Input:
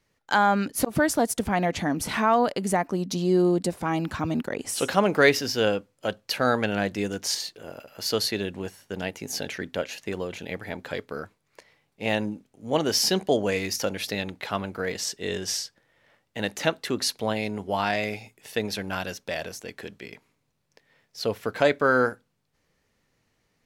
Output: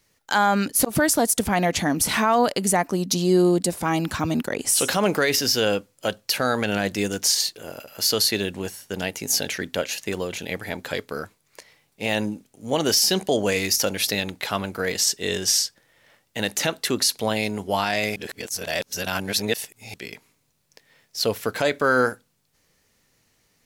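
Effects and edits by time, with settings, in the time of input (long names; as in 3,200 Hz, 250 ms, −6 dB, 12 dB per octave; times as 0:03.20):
0:18.16–0:19.94: reverse
whole clip: high-shelf EQ 4,400 Hz +12 dB; boost into a limiter +11.5 dB; level −8.5 dB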